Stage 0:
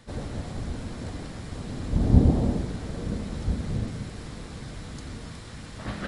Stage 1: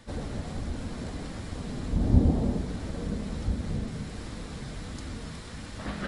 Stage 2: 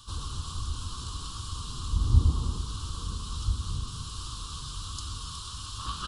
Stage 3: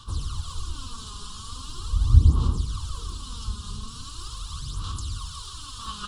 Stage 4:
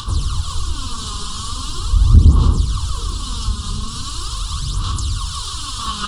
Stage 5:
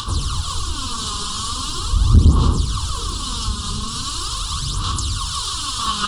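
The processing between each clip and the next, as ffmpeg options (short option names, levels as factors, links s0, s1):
-filter_complex "[0:a]asplit=2[s0][s1];[s1]acompressor=threshold=0.0224:ratio=6,volume=0.75[s2];[s0][s2]amix=inputs=2:normalize=0,flanger=delay=3.2:depth=1.9:regen=-62:speed=1.4:shape=triangular"
-af "firequalizer=gain_entry='entry(100,0);entry(200,-17);entry(360,-12);entry(650,-27);entry(1100,10);entry(2000,-27);entry(2900,7)':delay=0.05:min_phase=1,volume=1.19"
-af "aphaser=in_gain=1:out_gain=1:delay=4.9:decay=0.63:speed=0.41:type=sinusoidal,volume=0.841"
-filter_complex "[0:a]asplit=2[s0][s1];[s1]acompressor=mode=upward:threshold=0.0501:ratio=2.5,volume=0.794[s2];[s0][s2]amix=inputs=2:normalize=0,asoftclip=type=tanh:threshold=0.473,volume=1.88"
-af "lowshelf=f=120:g=-8,volume=1.41"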